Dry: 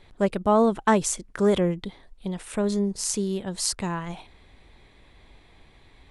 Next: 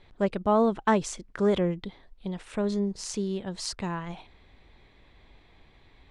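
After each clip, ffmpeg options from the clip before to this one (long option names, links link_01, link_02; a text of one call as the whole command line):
ffmpeg -i in.wav -af "lowpass=5400,volume=-3dB" out.wav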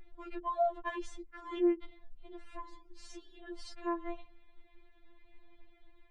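ffmpeg -i in.wav -af "bass=frequency=250:gain=7,treble=frequency=4000:gain=-14,afftfilt=real='re*4*eq(mod(b,16),0)':imag='im*4*eq(mod(b,16),0)':win_size=2048:overlap=0.75,volume=-5dB" out.wav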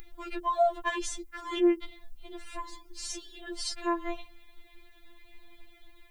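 ffmpeg -i in.wav -af "crystalizer=i=5:c=0,volume=4.5dB" out.wav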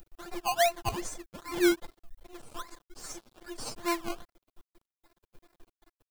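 ffmpeg -i in.wav -filter_complex "[0:a]acrossover=split=4800[link_01][link_02];[link_01]acrusher=samples=19:mix=1:aa=0.000001:lfo=1:lforange=11.4:lforate=2.5[link_03];[link_03][link_02]amix=inputs=2:normalize=0,aeval=exprs='sgn(val(0))*max(abs(val(0))-0.00501,0)':channel_layout=same" out.wav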